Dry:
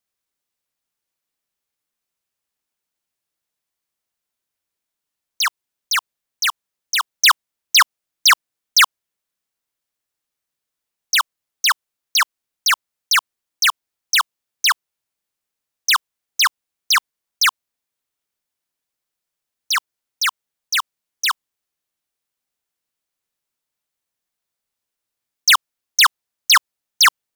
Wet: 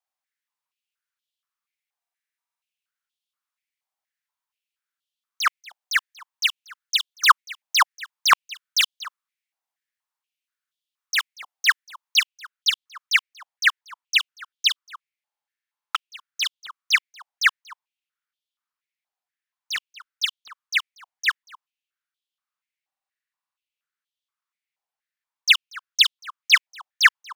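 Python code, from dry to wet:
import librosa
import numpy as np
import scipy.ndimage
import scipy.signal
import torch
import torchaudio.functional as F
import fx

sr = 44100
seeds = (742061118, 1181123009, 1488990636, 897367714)

y = fx.high_shelf(x, sr, hz=5900.0, db=fx.steps((0.0, -4.0), (12.22, -10.5)))
y = y + 10.0 ** (-23.0 / 20.0) * np.pad(y, (int(236 * sr / 1000.0), 0))[:len(y)]
y = fx.buffer_glitch(y, sr, at_s=(1.98, 15.25, 22.87), block=2048, repeats=14)
y = fx.filter_held_highpass(y, sr, hz=4.2, low_hz=780.0, high_hz=3300.0)
y = F.gain(torch.from_numpy(y), -7.0).numpy()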